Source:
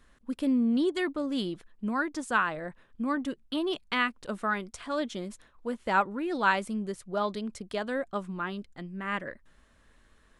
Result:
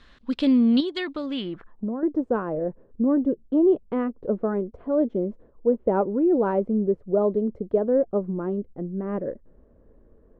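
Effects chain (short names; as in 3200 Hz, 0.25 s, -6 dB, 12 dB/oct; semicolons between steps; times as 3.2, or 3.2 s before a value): 0.8–2.03 compressor 5:1, threshold -34 dBFS, peak gain reduction 9.5 dB; low-pass sweep 4000 Hz -> 470 Hz, 1.25–1.96; gain +7 dB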